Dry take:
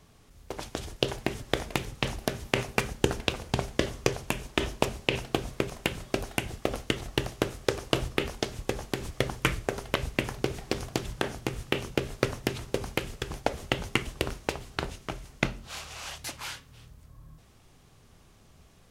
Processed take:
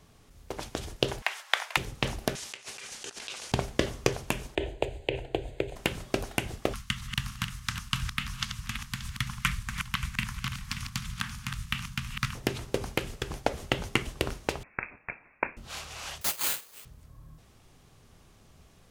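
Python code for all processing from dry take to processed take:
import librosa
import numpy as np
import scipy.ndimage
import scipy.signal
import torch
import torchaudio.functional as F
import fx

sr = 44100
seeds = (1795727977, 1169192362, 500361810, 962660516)

y = fx.chain(x, sr, fx.highpass(hz=810.0, slope=24),
    fx.peak_eq(hz=1600.0, db=7.5, octaves=2.7),
    fx.notch(hz=1200.0, q=29.0), at=(1.22, 1.77))
y = fx.chain(y, sr, fx.weighting(curve='ITU-R 468'),
    fx.auto_swell(attack_ms=109.0),
    fx.over_compress(threshold_db=-41.0, ratio=-0.5), at=(2.35, 3.52))
y = fx.chain(y, sr, fx.moving_average(points=8),
    fx.fixed_phaser(hz=490.0, stages=4),
    fx.band_squash(depth_pct=70), at=(4.55, 5.76))
y = fx.chain(y, sr, fx.reverse_delay_fb(ms=290, feedback_pct=44, wet_db=-7),
    fx.ellip_bandstop(low_hz=200.0, high_hz=1100.0, order=3, stop_db=60), at=(6.73, 12.35))
y = fx.chain(y, sr, fx.highpass(hz=510.0, slope=24),
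    fx.freq_invert(carrier_hz=3000), at=(14.63, 15.57))
y = fx.chain(y, sr, fx.steep_highpass(hz=390.0, slope=36),
    fx.resample_bad(factor=8, down='none', up='zero_stuff'), at=(16.21, 16.85))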